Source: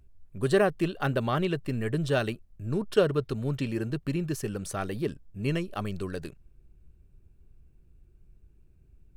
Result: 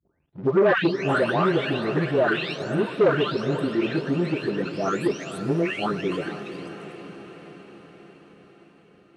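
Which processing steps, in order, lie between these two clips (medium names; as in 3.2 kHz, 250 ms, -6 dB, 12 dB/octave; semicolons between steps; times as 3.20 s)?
delay that grows with frequency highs late, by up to 661 ms; waveshaping leveller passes 2; band-pass 220–4000 Hz; on a send: echo that smears into a reverb 468 ms, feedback 63%, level -11 dB; on the sum: trim +3 dB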